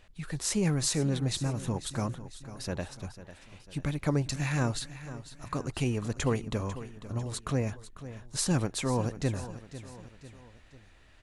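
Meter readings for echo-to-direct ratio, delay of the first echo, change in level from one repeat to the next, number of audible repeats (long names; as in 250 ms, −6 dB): −13.0 dB, 497 ms, −6.0 dB, 3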